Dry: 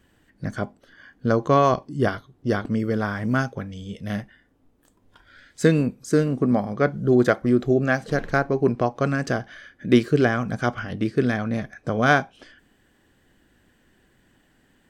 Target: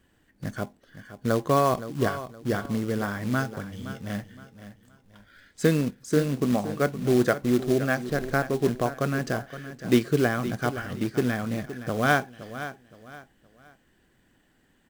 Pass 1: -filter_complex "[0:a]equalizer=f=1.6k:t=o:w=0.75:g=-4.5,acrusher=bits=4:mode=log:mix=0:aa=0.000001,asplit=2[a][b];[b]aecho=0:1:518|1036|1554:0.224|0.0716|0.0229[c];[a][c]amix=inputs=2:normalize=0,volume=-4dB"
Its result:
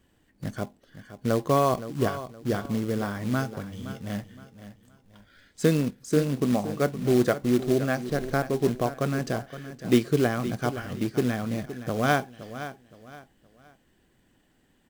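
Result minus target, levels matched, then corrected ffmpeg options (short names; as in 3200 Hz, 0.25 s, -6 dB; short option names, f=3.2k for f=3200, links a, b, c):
2000 Hz band -3.5 dB
-filter_complex "[0:a]acrusher=bits=4:mode=log:mix=0:aa=0.000001,asplit=2[a][b];[b]aecho=0:1:518|1036|1554:0.224|0.0716|0.0229[c];[a][c]amix=inputs=2:normalize=0,volume=-4dB"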